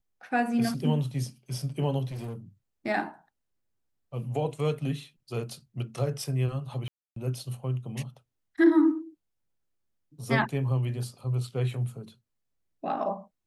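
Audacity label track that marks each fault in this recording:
2.110000	2.360000	clipped -33.5 dBFS
6.880000	7.160000	gap 0.283 s

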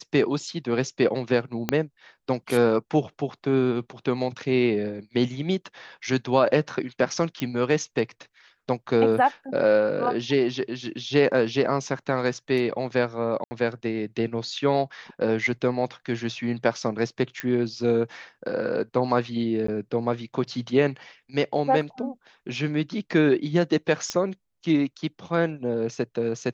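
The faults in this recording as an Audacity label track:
1.690000	1.690000	pop -8 dBFS
7.400000	7.400000	pop -13 dBFS
13.440000	13.510000	gap 70 ms
17.400000	17.400000	pop -13 dBFS
19.670000	19.680000	gap 14 ms
24.100000	24.100000	pop -13 dBFS

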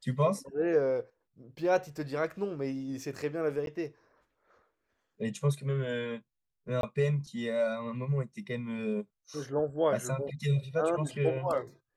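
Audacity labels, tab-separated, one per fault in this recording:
3.660000	3.670000	gap 12 ms
6.810000	6.830000	gap 22 ms

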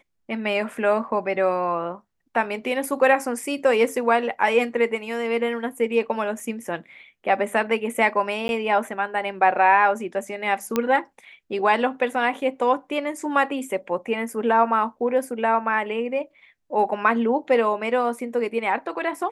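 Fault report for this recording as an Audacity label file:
6.400000	6.400000	gap 2.6 ms
8.480000	8.490000	gap
10.760000	10.760000	pop -8 dBFS

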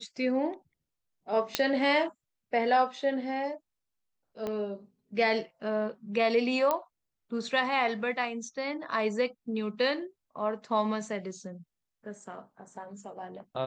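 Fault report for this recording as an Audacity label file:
1.550000	1.550000	pop -8 dBFS
4.470000	4.470000	pop -21 dBFS
6.710000	6.710000	pop -14 dBFS

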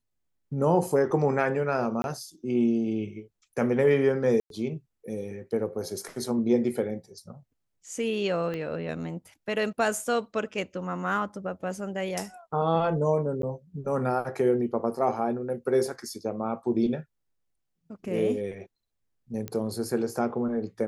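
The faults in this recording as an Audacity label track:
2.020000	2.040000	gap 21 ms
4.400000	4.500000	gap 0.102 s
8.540000	8.540000	pop -22 dBFS
13.420000	13.430000	gap
19.480000	19.480000	pop -18 dBFS

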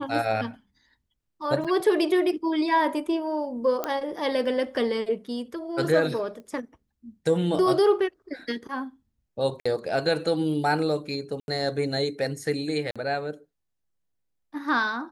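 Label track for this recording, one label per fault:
1.640000	1.650000	gap 6.1 ms
3.840000	3.840000	pop -13 dBFS
6.400000	6.400000	pop -33 dBFS
9.600000	9.650000	gap 55 ms
11.400000	11.480000	gap 81 ms
12.910000	12.960000	gap 46 ms

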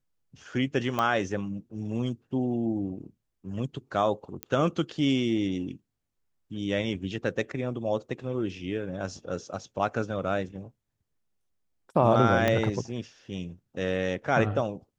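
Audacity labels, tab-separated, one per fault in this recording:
0.990000	0.990000	pop -14 dBFS
4.430000	4.430000	pop -15 dBFS
12.480000	12.480000	pop -11 dBFS

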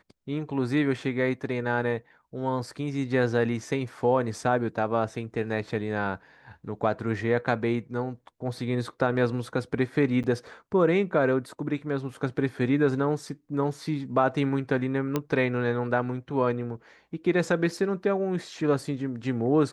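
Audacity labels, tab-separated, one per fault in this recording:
10.230000	10.240000	gap 8.1 ms
15.160000	15.160000	pop -12 dBFS

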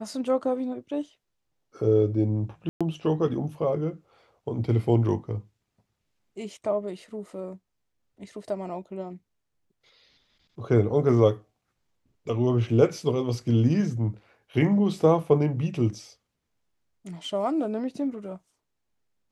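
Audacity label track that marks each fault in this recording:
2.690000	2.810000	gap 0.116 s

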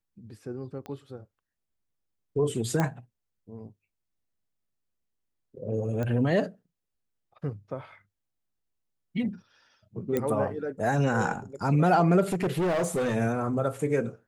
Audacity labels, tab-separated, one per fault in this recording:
0.860000	0.860000	pop -26 dBFS
2.800000	2.800000	pop -13 dBFS
6.030000	6.030000	pop -20 dBFS
10.170000	10.170000	pop -14 dBFS
12.320000	13.160000	clipped -23 dBFS

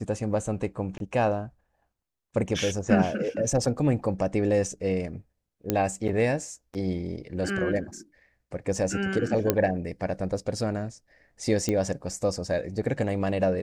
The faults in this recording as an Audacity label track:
0.980000	1.000000	gap 22 ms
5.700000	5.700000	pop -9 dBFS
9.500000	9.500000	pop -7 dBFS
11.690000	11.690000	pop -13 dBFS

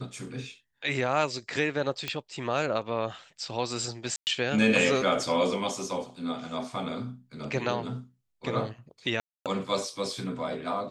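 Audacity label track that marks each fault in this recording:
2.080000	2.080000	pop -15 dBFS
4.160000	4.270000	gap 0.109 s
9.200000	9.460000	gap 0.257 s

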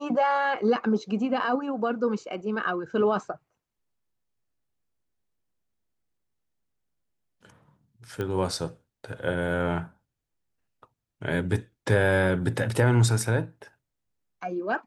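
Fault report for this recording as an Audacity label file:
8.210000	8.210000	pop -19 dBFS

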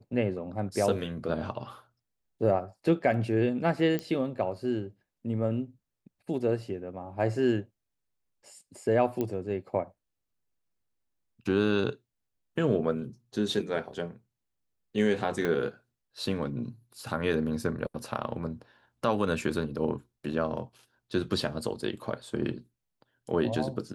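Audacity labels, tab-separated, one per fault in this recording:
3.990000	3.990000	pop -18 dBFS
9.210000	9.210000	pop -18 dBFS
15.450000	15.450000	pop -17 dBFS

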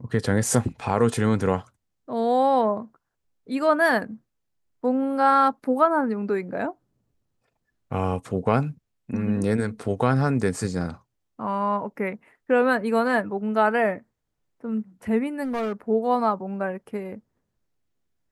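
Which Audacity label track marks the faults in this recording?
15.430000	15.730000	clipped -23.5 dBFS

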